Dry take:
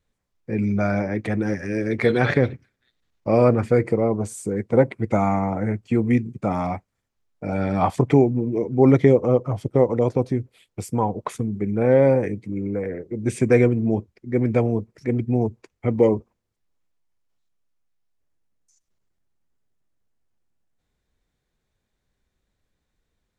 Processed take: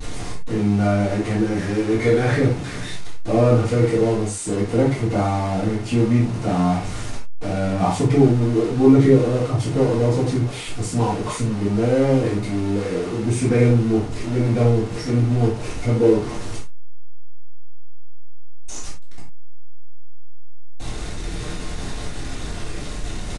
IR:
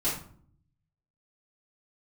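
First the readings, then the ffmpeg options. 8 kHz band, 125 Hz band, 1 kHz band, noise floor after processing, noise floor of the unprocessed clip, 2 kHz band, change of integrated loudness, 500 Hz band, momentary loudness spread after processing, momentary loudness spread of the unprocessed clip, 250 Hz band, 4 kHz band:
+10.0 dB, +4.5 dB, +1.0 dB, -29 dBFS, -78 dBFS, +0.5 dB, +2.0 dB, 0.0 dB, 16 LU, 11 LU, +2.5 dB, no reading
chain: -filter_complex "[0:a]aeval=exprs='val(0)+0.5*0.0794*sgn(val(0))':c=same[s0];[1:a]atrim=start_sample=2205,afade=t=out:st=0.16:d=0.01,atrim=end_sample=7497[s1];[s0][s1]afir=irnorm=-1:irlink=0,aresample=22050,aresample=44100,volume=0.299"

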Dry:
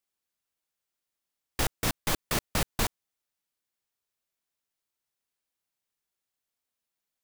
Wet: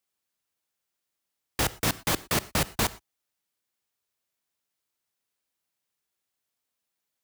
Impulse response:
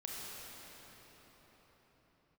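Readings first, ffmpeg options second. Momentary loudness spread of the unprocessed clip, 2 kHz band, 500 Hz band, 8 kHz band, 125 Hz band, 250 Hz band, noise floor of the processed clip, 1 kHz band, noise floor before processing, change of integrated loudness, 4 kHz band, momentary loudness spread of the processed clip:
3 LU, +3.0 dB, +3.0 dB, +3.0 dB, +2.5 dB, +3.0 dB, -84 dBFS, +3.0 dB, under -85 dBFS, +3.0 dB, +3.0 dB, 3 LU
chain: -filter_complex "[0:a]highpass=54,asplit=2[s0][s1];[1:a]atrim=start_sample=2205,afade=t=out:st=0.17:d=0.01,atrim=end_sample=7938[s2];[s1][s2]afir=irnorm=-1:irlink=0,volume=0.335[s3];[s0][s3]amix=inputs=2:normalize=0,volume=1.19"

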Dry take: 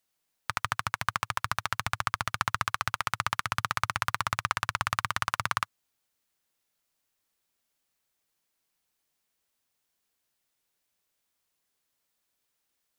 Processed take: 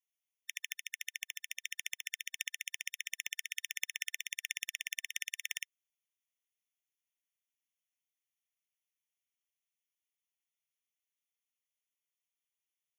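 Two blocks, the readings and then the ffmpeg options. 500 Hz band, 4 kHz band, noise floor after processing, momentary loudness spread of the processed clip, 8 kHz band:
under -40 dB, -4.5 dB, under -85 dBFS, 4 LU, -0.5 dB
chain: -af "aeval=exprs='0.531*(cos(1*acos(clip(val(0)/0.531,-1,1)))-cos(1*PI/2))+0.133*(cos(3*acos(clip(val(0)/0.531,-1,1)))-cos(3*PI/2))':c=same,asuperstop=centerf=1300:order=4:qfactor=1.5,afftfilt=real='re*eq(mod(floor(b*sr/1024/1800),2),1)':imag='im*eq(mod(floor(b*sr/1024/1800),2),1)':win_size=1024:overlap=0.75,volume=1.19"

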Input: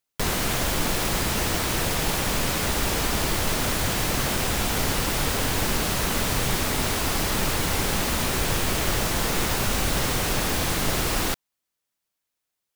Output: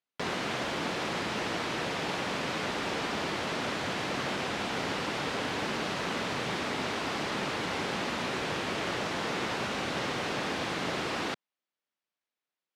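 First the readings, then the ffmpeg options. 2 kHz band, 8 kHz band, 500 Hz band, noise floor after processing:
-5.0 dB, -17.0 dB, -4.5 dB, under -85 dBFS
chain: -af "highpass=190,lowpass=3800,volume=0.596"

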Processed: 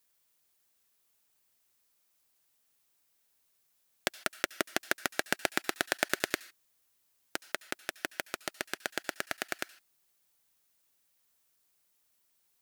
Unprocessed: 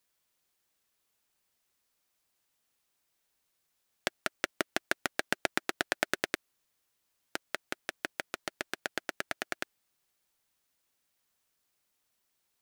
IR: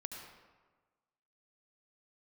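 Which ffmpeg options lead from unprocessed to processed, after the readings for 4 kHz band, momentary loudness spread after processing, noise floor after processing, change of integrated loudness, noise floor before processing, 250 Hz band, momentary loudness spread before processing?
+1.5 dB, 9 LU, -74 dBFS, +1.0 dB, -79 dBFS, 0.0 dB, 8 LU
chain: -filter_complex "[0:a]asplit=2[s0][s1];[s1]aderivative[s2];[1:a]atrim=start_sample=2205,afade=t=out:st=0.21:d=0.01,atrim=end_sample=9702[s3];[s2][s3]afir=irnorm=-1:irlink=0,volume=1.06[s4];[s0][s4]amix=inputs=2:normalize=0"

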